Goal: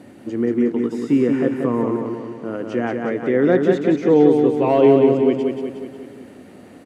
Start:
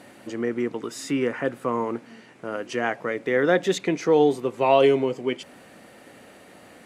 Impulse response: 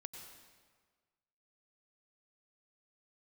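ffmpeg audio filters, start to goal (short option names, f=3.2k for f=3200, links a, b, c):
-filter_complex "[0:a]equalizer=f=86:t=o:w=1.3:g=12.5,volume=9dB,asoftclip=hard,volume=-9dB,equalizer=f=280:t=o:w=1.8:g=11.5,acrossover=split=3200[a][b];[b]acompressor=threshold=-44dB:ratio=4:attack=1:release=60[c];[a][c]amix=inputs=2:normalize=0,asplit=2[d][e];[e]aecho=0:1:182|364|546|728|910|1092|1274:0.596|0.322|0.174|0.0938|0.0506|0.0274|0.0148[f];[d][f]amix=inputs=2:normalize=0,volume=-4dB"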